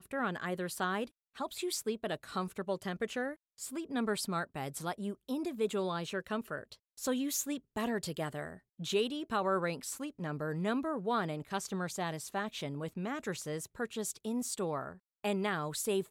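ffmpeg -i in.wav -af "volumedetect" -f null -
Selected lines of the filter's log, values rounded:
mean_volume: -36.5 dB
max_volume: -21.1 dB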